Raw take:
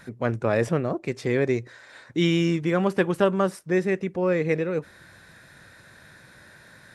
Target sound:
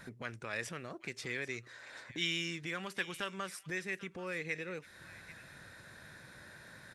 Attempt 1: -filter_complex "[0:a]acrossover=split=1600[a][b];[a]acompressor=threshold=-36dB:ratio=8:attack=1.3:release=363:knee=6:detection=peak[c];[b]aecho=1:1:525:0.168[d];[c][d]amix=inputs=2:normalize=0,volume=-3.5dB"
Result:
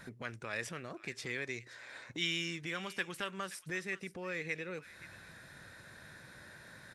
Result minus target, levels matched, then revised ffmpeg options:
echo 0.264 s early
-filter_complex "[0:a]acrossover=split=1600[a][b];[a]acompressor=threshold=-36dB:ratio=8:attack=1.3:release=363:knee=6:detection=peak[c];[b]aecho=1:1:789:0.168[d];[c][d]amix=inputs=2:normalize=0,volume=-3.5dB"

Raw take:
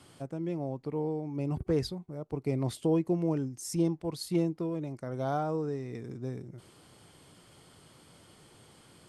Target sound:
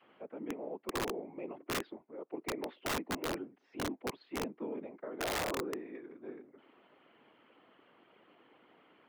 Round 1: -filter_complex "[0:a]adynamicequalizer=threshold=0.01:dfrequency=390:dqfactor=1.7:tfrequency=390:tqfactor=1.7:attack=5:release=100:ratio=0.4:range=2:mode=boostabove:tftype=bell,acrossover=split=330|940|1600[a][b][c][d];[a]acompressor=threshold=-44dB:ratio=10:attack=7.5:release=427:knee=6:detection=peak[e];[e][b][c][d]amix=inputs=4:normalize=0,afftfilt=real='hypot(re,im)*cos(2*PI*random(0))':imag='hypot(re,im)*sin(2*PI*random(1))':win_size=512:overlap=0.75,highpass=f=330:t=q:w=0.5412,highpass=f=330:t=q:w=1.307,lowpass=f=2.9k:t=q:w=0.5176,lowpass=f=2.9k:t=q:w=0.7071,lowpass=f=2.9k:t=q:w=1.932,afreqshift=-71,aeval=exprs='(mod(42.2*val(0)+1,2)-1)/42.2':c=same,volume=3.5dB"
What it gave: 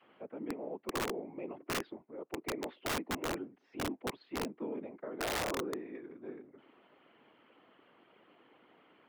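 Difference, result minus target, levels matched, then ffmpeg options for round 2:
compressor: peak gain reduction -7.5 dB
-filter_complex "[0:a]adynamicequalizer=threshold=0.01:dfrequency=390:dqfactor=1.7:tfrequency=390:tqfactor=1.7:attack=5:release=100:ratio=0.4:range=2:mode=boostabove:tftype=bell,acrossover=split=330|940|1600[a][b][c][d];[a]acompressor=threshold=-52.5dB:ratio=10:attack=7.5:release=427:knee=6:detection=peak[e];[e][b][c][d]amix=inputs=4:normalize=0,afftfilt=real='hypot(re,im)*cos(2*PI*random(0))':imag='hypot(re,im)*sin(2*PI*random(1))':win_size=512:overlap=0.75,highpass=f=330:t=q:w=0.5412,highpass=f=330:t=q:w=1.307,lowpass=f=2.9k:t=q:w=0.5176,lowpass=f=2.9k:t=q:w=0.7071,lowpass=f=2.9k:t=q:w=1.932,afreqshift=-71,aeval=exprs='(mod(42.2*val(0)+1,2)-1)/42.2':c=same,volume=3.5dB"

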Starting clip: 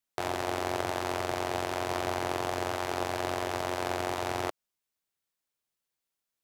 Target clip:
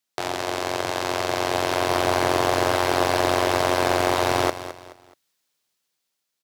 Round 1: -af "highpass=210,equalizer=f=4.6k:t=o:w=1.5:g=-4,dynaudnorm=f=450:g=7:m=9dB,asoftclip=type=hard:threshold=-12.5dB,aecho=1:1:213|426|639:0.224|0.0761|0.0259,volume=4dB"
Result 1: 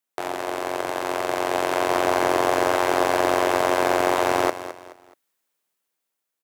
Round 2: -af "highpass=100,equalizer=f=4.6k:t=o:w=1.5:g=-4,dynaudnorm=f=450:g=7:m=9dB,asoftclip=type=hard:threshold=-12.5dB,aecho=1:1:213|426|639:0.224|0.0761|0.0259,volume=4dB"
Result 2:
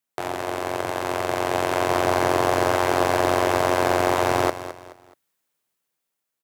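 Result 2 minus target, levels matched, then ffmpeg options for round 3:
4000 Hz band -4.5 dB
-af "highpass=100,equalizer=f=4.6k:t=o:w=1.5:g=5,dynaudnorm=f=450:g=7:m=9dB,asoftclip=type=hard:threshold=-12.5dB,aecho=1:1:213|426|639:0.224|0.0761|0.0259,volume=4dB"

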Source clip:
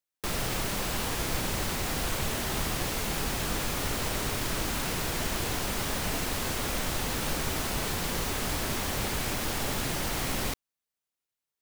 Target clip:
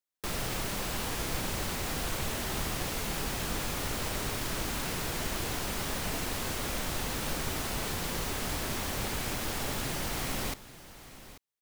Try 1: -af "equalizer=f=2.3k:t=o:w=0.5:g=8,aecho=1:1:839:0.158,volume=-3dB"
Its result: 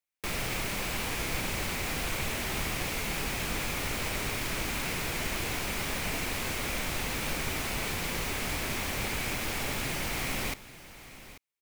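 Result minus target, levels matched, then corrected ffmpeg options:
2000 Hz band +3.0 dB
-af "aecho=1:1:839:0.158,volume=-3dB"

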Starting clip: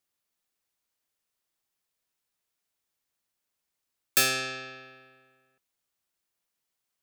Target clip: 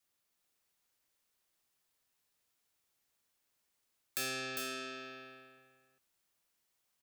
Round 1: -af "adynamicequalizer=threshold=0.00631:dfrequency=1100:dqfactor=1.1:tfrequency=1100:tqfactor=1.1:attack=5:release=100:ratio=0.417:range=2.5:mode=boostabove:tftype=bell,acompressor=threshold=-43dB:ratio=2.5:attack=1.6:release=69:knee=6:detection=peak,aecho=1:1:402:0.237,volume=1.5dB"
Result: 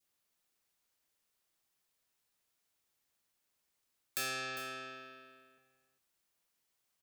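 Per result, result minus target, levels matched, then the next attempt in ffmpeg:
echo-to-direct -8 dB; 250 Hz band -5.0 dB
-af "adynamicequalizer=threshold=0.00631:dfrequency=1100:dqfactor=1.1:tfrequency=1100:tqfactor=1.1:attack=5:release=100:ratio=0.417:range=2.5:mode=boostabove:tftype=bell,acompressor=threshold=-43dB:ratio=2.5:attack=1.6:release=69:knee=6:detection=peak,aecho=1:1:402:0.596,volume=1.5dB"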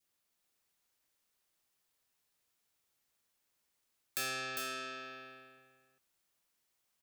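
250 Hz band -4.5 dB
-af "adynamicequalizer=threshold=0.00631:dfrequency=290:dqfactor=1.1:tfrequency=290:tqfactor=1.1:attack=5:release=100:ratio=0.417:range=2.5:mode=boostabove:tftype=bell,acompressor=threshold=-43dB:ratio=2.5:attack=1.6:release=69:knee=6:detection=peak,aecho=1:1:402:0.596,volume=1.5dB"

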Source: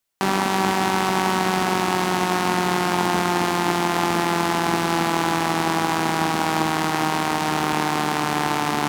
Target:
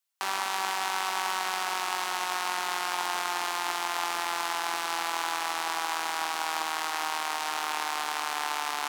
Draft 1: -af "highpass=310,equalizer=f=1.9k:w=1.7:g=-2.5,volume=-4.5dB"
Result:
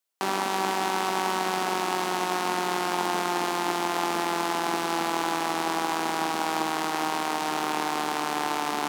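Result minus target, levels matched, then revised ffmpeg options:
250 Hz band +13.5 dB
-af "highpass=970,equalizer=f=1.9k:w=1.7:g=-2.5,volume=-4.5dB"

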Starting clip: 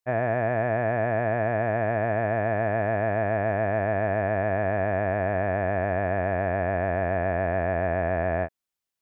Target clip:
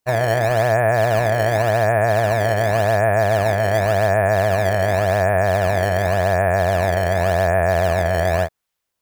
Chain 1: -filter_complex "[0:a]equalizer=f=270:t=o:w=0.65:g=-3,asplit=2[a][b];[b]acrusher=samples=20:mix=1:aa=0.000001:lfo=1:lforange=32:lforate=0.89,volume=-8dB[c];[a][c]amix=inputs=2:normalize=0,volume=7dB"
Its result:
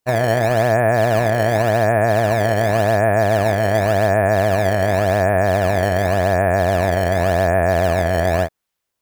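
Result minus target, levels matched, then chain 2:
250 Hz band +4.5 dB
-filter_complex "[0:a]equalizer=f=270:t=o:w=0.65:g=-14.5,asplit=2[a][b];[b]acrusher=samples=20:mix=1:aa=0.000001:lfo=1:lforange=32:lforate=0.89,volume=-8dB[c];[a][c]amix=inputs=2:normalize=0,volume=7dB"

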